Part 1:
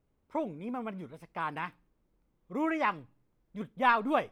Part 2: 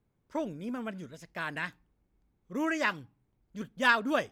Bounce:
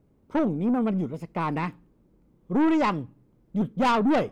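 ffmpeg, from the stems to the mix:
-filter_complex "[0:a]equalizer=f=210:w=0.31:g=14,volume=2.5dB[a];[1:a]volume=-5dB[b];[a][b]amix=inputs=2:normalize=0,aeval=exprs='(tanh(7.94*val(0)+0.15)-tanh(0.15))/7.94':c=same"

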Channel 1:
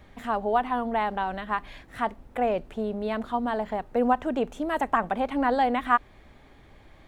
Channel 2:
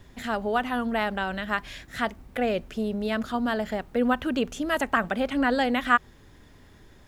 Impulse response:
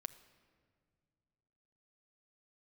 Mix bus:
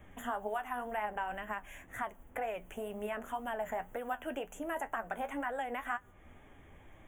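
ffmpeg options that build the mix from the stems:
-filter_complex "[0:a]alimiter=limit=-20.5dB:level=0:latency=1:release=359,volume=0.5dB,asplit=2[a][b];[1:a]aemphasis=mode=production:type=75kf,bandreject=f=60:t=h:w=6,bandreject=f=120:t=h:w=6,bandreject=f=180:t=h:w=6,volume=-1,volume=-10dB,asplit=2[c][d];[d]volume=-12.5dB[e];[b]apad=whole_len=312038[f];[c][f]sidechaingate=range=-33dB:threshold=-46dB:ratio=16:detection=peak[g];[2:a]atrim=start_sample=2205[h];[e][h]afir=irnorm=-1:irlink=0[i];[a][g][i]amix=inputs=3:normalize=0,acrossover=split=820|1700[j][k][l];[j]acompressor=threshold=-34dB:ratio=4[m];[k]acompressor=threshold=-34dB:ratio=4[n];[l]acompressor=threshold=-46dB:ratio=4[o];[m][n][o]amix=inputs=3:normalize=0,flanger=delay=8.8:depth=4.1:regen=54:speed=2:shape=triangular,asuperstop=centerf=4600:order=8:qfactor=1.6"

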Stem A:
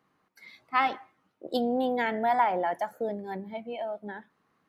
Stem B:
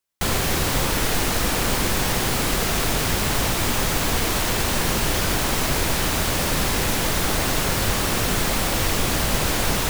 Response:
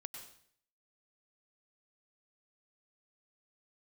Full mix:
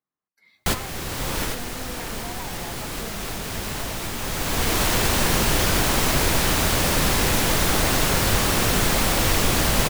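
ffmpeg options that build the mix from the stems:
-filter_complex "[0:a]asubboost=boost=6.5:cutoff=160,agate=range=-15dB:threshold=-58dB:ratio=16:detection=peak,acompressor=threshold=-28dB:ratio=6,volume=-10.5dB,asplit=3[a][b][c];[b]volume=-5.5dB[d];[1:a]adelay=450,volume=0.5dB,asplit=2[e][f];[f]volume=-12.5dB[g];[c]apad=whole_len=456101[h];[e][h]sidechaincompress=threshold=-55dB:ratio=8:attack=26:release=737[i];[2:a]atrim=start_sample=2205[j];[d][g]amix=inputs=2:normalize=0[k];[k][j]afir=irnorm=-1:irlink=0[l];[a][i][l]amix=inputs=3:normalize=0"

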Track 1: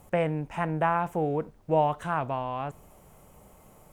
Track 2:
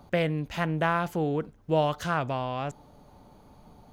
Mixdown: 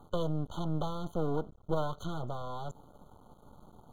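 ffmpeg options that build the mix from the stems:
-filter_complex "[0:a]acrusher=bits=8:mode=log:mix=0:aa=0.000001,volume=-10dB[a];[1:a]acrossover=split=370|3000[b][c][d];[c]acompressor=threshold=-36dB:ratio=4[e];[b][e][d]amix=inputs=3:normalize=0,highshelf=f=4.7k:g=-10.5,volume=1.5dB[f];[a][f]amix=inputs=2:normalize=0,bandreject=f=660:w=18,aeval=exprs='max(val(0),0)':c=same,afftfilt=real='re*eq(mod(floor(b*sr/1024/1500),2),0)':imag='im*eq(mod(floor(b*sr/1024/1500),2),0)':win_size=1024:overlap=0.75"

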